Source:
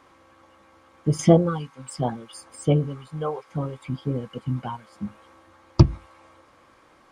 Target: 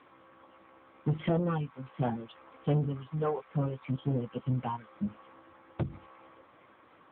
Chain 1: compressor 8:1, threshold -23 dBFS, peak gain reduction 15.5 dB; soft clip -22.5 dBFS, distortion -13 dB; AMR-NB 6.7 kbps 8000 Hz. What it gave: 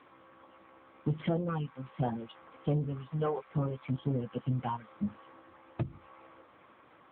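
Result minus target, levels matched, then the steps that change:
compressor: peak gain reduction +5 dB
change: compressor 8:1, threshold -17 dBFS, peak gain reduction 10.5 dB

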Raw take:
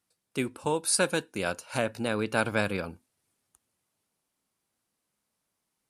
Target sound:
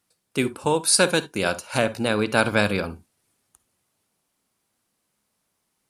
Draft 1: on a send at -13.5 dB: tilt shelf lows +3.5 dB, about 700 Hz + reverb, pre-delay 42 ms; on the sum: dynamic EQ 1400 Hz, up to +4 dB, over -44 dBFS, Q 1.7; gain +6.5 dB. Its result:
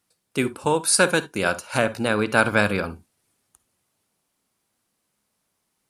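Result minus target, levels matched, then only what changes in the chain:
4000 Hz band -3.0 dB
change: dynamic EQ 4100 Hz, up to +4 dB, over -44 dBFS, Q 1.7

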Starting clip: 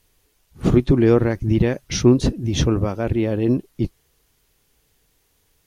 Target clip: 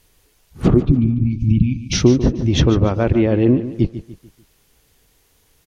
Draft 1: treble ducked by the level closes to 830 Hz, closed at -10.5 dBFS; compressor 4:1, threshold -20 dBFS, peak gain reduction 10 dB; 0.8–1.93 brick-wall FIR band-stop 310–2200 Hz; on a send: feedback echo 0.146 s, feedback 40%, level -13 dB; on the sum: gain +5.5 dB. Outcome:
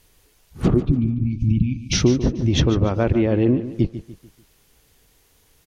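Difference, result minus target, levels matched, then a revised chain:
compressor: peak gain reduction +4.5 dB
treble ducked by the level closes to 830 Hz, closed at -10.5 dBFS; compressor 4:1, threshold -14 dBFS, peak gain reduction 5.5 dB; 0.8–1.93 brick-wall FIR band-stop 310–2200 Hz; on a send: feedback echo 0.146 s, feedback 40%, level -13 dB; on the sum: gain +5.5 dB

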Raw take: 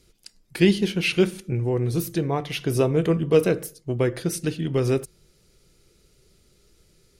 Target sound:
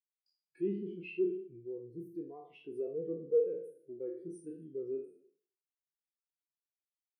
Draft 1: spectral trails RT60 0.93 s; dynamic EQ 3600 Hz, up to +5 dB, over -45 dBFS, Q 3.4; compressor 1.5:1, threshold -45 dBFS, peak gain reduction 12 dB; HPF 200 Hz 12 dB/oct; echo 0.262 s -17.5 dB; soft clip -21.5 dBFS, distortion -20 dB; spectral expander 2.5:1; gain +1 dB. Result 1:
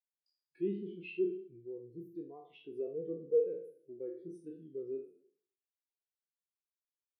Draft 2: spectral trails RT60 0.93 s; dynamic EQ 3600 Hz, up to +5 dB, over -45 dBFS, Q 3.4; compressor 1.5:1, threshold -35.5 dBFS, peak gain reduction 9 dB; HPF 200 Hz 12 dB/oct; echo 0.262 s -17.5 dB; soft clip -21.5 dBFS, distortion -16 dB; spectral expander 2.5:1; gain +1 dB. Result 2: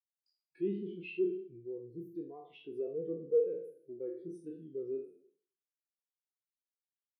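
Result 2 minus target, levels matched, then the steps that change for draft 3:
4000 Hz band +3.5 dB
change: dynamic EQ 9000 Hz, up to +5 dB, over -45 dBFS, Q 3.4

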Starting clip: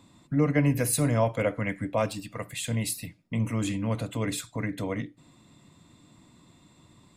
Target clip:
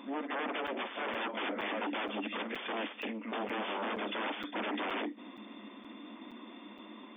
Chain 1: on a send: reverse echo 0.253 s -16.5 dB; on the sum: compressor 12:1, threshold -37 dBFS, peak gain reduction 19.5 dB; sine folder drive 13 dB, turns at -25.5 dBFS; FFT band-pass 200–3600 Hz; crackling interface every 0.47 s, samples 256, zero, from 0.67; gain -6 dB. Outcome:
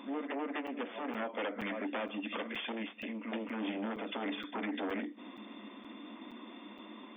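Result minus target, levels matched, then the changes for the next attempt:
compressor: peak gain reduction +8 dB
change: compressor 12:1, threshold -28.5 dBFS, peak gain reduction 12 dB

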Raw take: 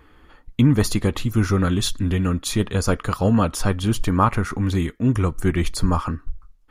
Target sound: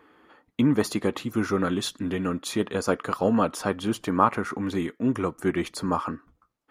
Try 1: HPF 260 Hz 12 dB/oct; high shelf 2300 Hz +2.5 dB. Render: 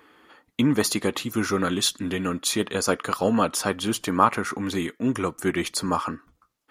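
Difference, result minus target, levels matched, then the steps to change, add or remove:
4000 Hz band +6.0 dB
change: high shelf 2300 Hz -8 dB

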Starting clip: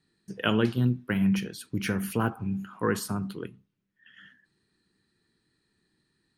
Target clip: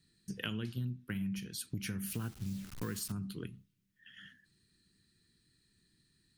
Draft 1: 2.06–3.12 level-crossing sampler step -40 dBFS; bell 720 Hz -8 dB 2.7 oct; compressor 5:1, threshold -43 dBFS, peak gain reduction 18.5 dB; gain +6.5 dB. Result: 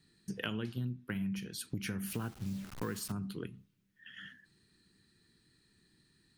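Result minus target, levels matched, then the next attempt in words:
1000 Hz band +4.5 dB
2.06–3.12 level-crossing sampler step -40 dBFS; bell 720 Hz -18.5 dB 2.7 oct; compressor 5:1, threshold -43 dBFS, peak gain reduction 16 dB; gain +6.5 dB

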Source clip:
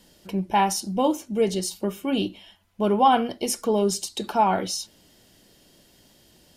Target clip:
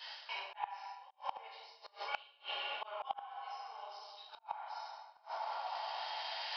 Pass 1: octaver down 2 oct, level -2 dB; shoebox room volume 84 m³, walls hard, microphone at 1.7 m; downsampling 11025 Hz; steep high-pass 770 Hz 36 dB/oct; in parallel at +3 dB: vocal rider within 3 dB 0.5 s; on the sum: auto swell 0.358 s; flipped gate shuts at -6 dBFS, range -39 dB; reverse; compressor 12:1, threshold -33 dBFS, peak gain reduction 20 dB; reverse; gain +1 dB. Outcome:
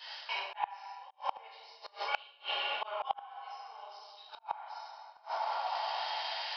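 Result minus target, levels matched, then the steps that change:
compressor: peak gain reduction -6 dB
change: compressor 12:1, threshold -39.5 dBFS, peak gain reduction 26 dB

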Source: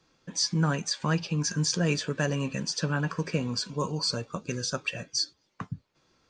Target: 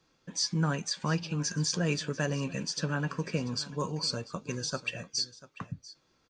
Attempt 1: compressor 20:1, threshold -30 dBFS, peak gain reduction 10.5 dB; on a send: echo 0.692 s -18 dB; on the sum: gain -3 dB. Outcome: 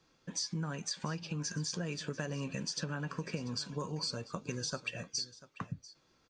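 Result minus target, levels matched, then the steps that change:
compressor: peak gain reduction +10.5 dB
remove: compressor 20:1, threshold -30 dBFS, peak gain reduction 10.5 dB

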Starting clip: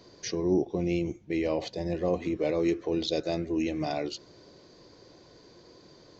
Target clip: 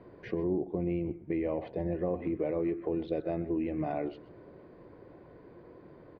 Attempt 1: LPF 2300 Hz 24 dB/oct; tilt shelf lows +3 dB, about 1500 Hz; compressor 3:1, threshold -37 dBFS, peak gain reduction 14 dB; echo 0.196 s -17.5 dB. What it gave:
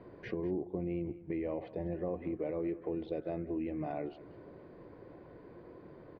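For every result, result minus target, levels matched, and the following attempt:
echo 70 ms late; compressor: peak gain reduction +4.5 dB
LPF 2300 Hz 24 dB/oct; tilt shelf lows +3 dB, about 1500 Hz; compressor 3:1, threshold -37 dBFS, peak gain reduction 14 dB; echo 0.126 s -17.5 dB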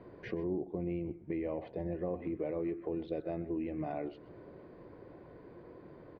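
compressor: peak gain reduction +4.5 dB
LPF 2300 Hz 24 dB/oct; tilt shelf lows +3 dB, about 1500 Hz; compressor 3:1, threshold -30 dBFS, peak gain reduction 9.5 dB; echo 0.126 s -17.5 dB

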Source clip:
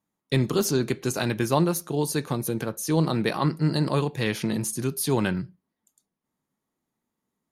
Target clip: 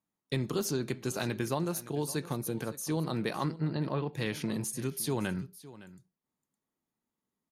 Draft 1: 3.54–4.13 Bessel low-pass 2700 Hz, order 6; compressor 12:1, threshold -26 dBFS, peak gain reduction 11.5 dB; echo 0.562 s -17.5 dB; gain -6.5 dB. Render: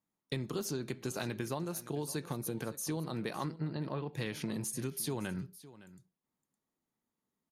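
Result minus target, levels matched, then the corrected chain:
compressor: peak gain reduction +6 dB
3.54–4.13 Bessel low-pass 2700 Hz, order 6; compressor 12:1, threshold -19.5 dBFS, peak gain reduction 5.5 dB; echo 0.562 s -17.5 dB; gain -6.5 dB

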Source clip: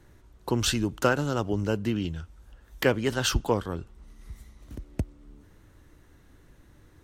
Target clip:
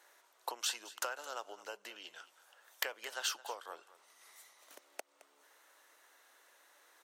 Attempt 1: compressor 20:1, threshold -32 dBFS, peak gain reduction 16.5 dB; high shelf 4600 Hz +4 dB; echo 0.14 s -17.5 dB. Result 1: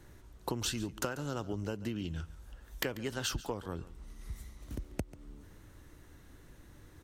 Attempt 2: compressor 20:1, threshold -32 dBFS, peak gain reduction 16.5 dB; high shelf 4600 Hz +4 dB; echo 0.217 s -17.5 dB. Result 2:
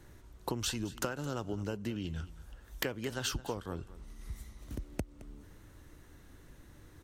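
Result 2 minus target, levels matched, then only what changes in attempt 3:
500 Hz band +5.5 dB
add after compressor: HPF 600 Hz 24 dB/oct

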